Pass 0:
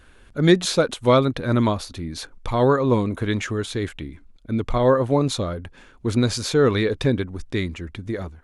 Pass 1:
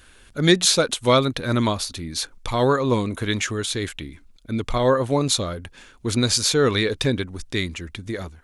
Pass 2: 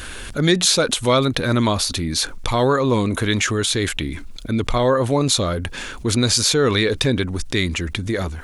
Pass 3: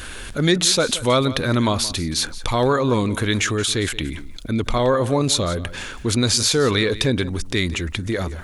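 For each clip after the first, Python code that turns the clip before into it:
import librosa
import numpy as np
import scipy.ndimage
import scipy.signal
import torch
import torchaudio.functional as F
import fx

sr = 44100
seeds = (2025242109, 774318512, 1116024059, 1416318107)

y1 = fx.high_shelf(x, sr, hz=2400.0, db=12.0)
y1 = y1 * librosa.db_to_amplitude(-2.0)
y2 = fx.env_flatten(y1, sr, amount_pct=50)
y2 = y2 * librosa.db_to_amplitude(-1.5)
y3 = y2 + 10.0 ** (-16.5 / 20.0) * np.pad(y2, (int(174 * sr / 1000.0), 0))[:len(y2)]
y3 = y3 * librosa.db_to_amplitude(-1.0)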